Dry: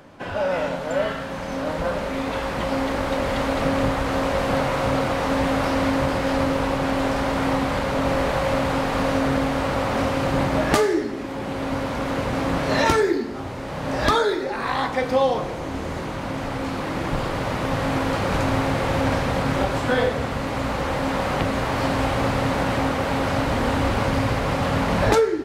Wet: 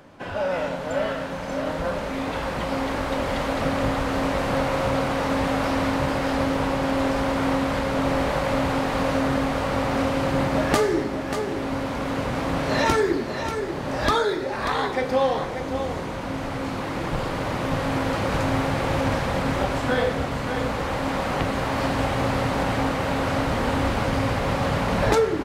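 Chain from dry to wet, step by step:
single-tap delay 588 ms −8 dB
level −2 dB

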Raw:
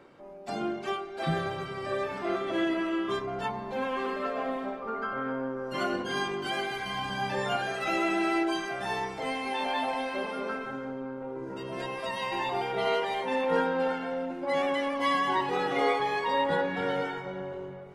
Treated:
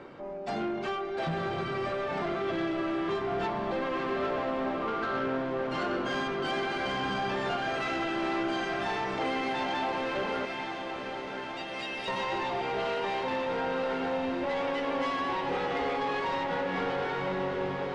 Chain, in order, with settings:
0:10.45–0:12.08: Butterworth high-pass 2,100 Hz
downward compressor 4 to 1, threshold −34 dBFS, peak gain reduction 11 dB
soft clipping −36 dBFS, distortion −12 dB
high-frequency loss of the air 99 metres
feedback delay with all-pass diffusion 994 ms, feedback 77%, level −8 dB
level +8.5 dB

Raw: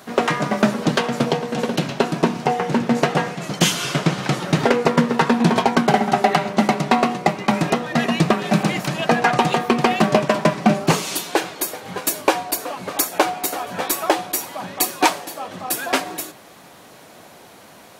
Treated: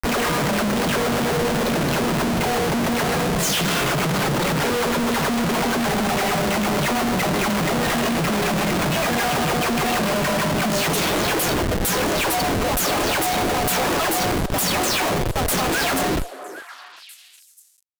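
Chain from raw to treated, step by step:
every frequency bin delayed by itself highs early, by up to 222 ms
comparator with hysteresis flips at −29.5 dBFS
echo through a band-pass that steps 402 ms, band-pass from 520 Hz, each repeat 1.4 octaves, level −10 dB

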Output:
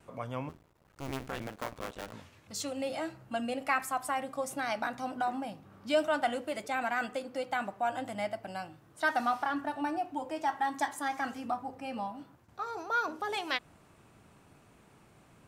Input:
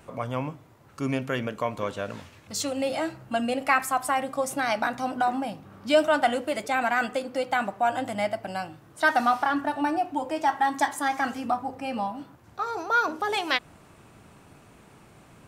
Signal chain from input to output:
0:00.49–0:02.13: sub-harmonics by changed cycles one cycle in 2, muted
noise gate with hold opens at −46 dBFS
level −7.5 dB

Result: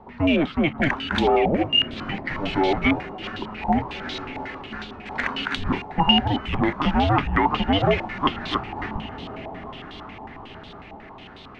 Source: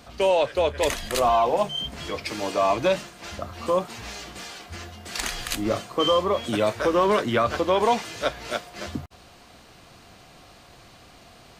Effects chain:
frequency shifter −300 Hz
feedback delay with all-pass diffusion 1,540 ms, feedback 43%, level −15 dB
low-pass on a step sequencer 11 Hz 850–3,600 Hz

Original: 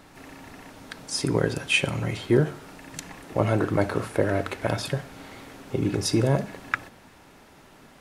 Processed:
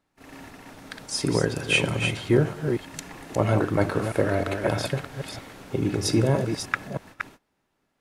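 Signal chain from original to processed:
delay that plays each chunk backwards 317 ms, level −6 dB
noise gate −44 dBFS, range −24 dB

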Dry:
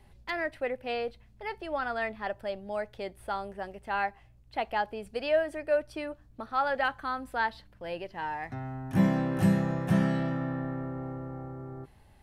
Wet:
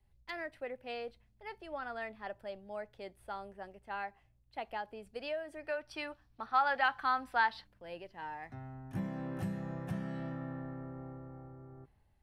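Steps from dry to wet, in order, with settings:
downward compressor 6 to 1, threshold −28 dBFS, peak gain reduction 10 dB
gain on a spectral selection 0:05.64–0:07.65, 690–6,000 Hz +8 dB
multiband upward and downward expander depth 40%
level −7.5 dB

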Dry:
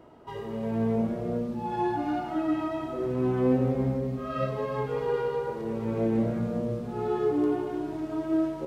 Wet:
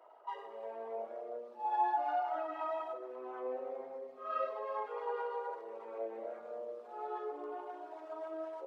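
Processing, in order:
spectral envelope exaggerated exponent 1.5
high-pass filter 680 Hz 24 dB per octave
level +1 dB

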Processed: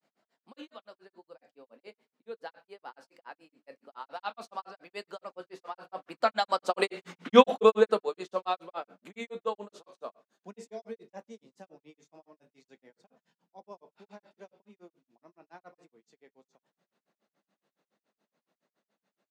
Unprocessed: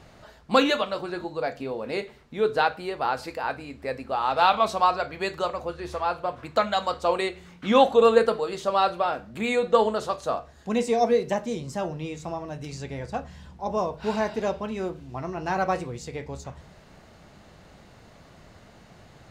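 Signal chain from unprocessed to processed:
source passing by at 0:07.11, 18 m/s, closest 5.3 metres
Butterworth high-pass 190 Hz 36 dB per octave
granular cloud 117 ms, grains 7.1 per second, spray 12 ms, pitch spread up and down by 0 semitones
level +7.5 dB

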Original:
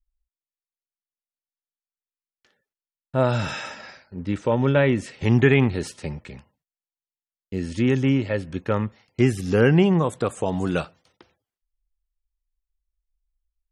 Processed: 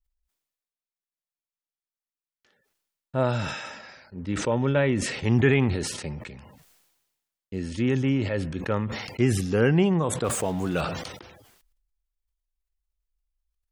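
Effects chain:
0:10.24–0:10.81: converter with a step at zero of −35 dBFS
level that may fall only so fast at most 47 dB per second
level −4 dB

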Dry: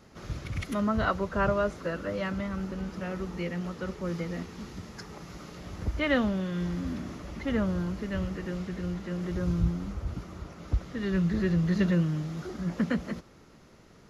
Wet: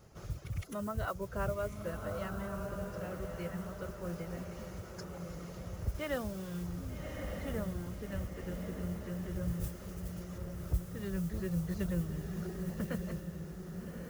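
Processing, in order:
reverb reduction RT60 0.59 s
noise that follows the level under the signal 24 dB
octave-band graphic EQ 125/250/1,000/2,000/4,000 Hz +3/−11/−4/−7/−7 dB
in parallel at +0.5 dB: downward compressor, threshold −43 dBFS, peak gain reduction 20.5 dB
0:05.94–0:06.63: on the sum: bit-depth reduction 8 bits, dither none
0:09.60–0:10.38: tilt shelving filter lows −6.5 dB
feedback delay with all-pass diffusion 1,185 ms, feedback 44%, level −5 dB
level −6 dB

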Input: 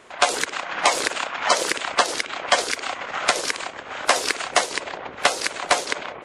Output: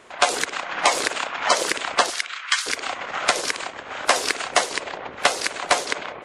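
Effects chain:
0:02.10–0:02.66: Butterworth high-pass 1,200 Hz 36 dB per octave
spring reverb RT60 1 s, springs 45 ms, DRR 18 dB

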